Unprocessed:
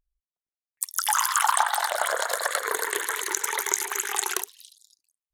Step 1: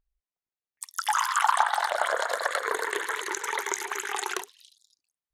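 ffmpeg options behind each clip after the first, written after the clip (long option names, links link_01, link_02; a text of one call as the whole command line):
ffmpeg -i in.wav -af "aemphasis=mode=reproduction:type=50fm" out.wav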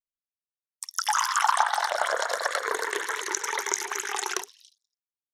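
ffmpeg -i in.wav -af "agate=range=-33dB:threshold=-49dB:ratio=3:detection=peak,equalizer=frequency=5600:width_type=o:width=0.37:gain=10.5" out.wav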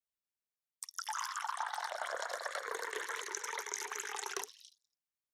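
ffmpeg -i in.wav -af "areverse,acompressor=threshold=-35dB:ratio=4,areverse,afreqshift=18,volume=-2.5dB" out.wav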